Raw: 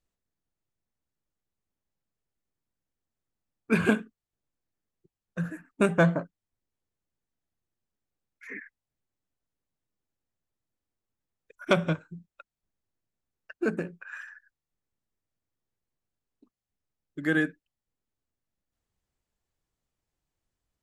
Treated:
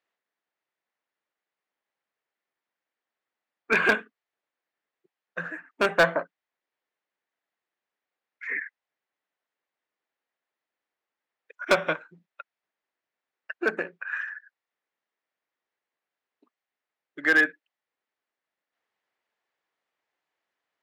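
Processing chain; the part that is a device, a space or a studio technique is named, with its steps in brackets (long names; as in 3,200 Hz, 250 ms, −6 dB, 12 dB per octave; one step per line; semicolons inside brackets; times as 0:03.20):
megaphone (band-pass filter 570–3,200 Hz; parametric band 1,900 Hz +4.5 dB 0.5 octaves; hard clipping −20.5 dBFS, distortion −12 dB)
level +7.5 dB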